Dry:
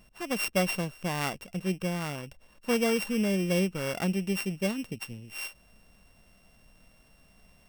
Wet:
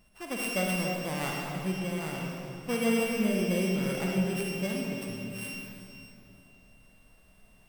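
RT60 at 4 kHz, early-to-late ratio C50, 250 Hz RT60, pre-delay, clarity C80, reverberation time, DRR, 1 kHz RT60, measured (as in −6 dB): 2.3 s, −1.0 dB, 3.4 s, 35 ms, 0.0 dB, 2.8 s, −2.0 dB, 2.6 s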